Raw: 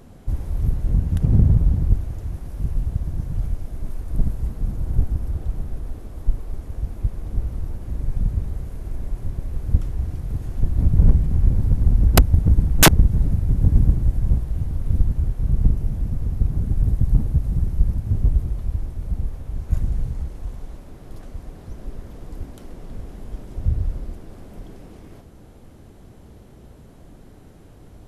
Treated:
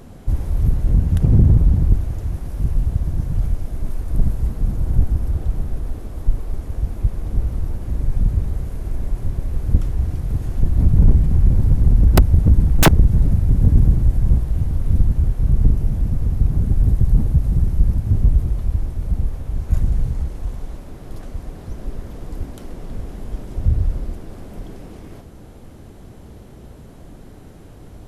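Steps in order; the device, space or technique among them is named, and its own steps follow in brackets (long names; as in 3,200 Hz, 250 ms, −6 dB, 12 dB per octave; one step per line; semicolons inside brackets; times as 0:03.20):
saturation between pre-emphasis and de-emphasis (high-shelf EQ 2,400 Hz +11 dB; soft clipping −8.5 dBFS, distortion −11 dB; high-shelf EQ 2,400 Hz −11 dB)
level +5 dB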